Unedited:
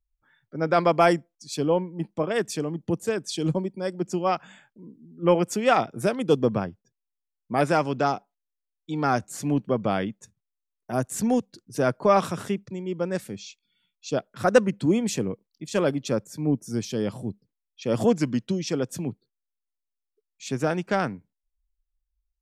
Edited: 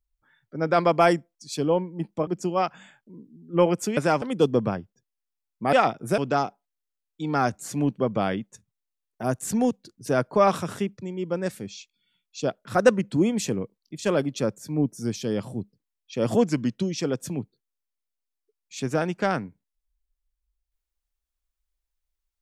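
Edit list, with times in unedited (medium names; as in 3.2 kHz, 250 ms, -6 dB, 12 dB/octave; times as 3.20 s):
2.27–3.96 s: delete
5.66–6.11 s: swap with 7.62–7.87 s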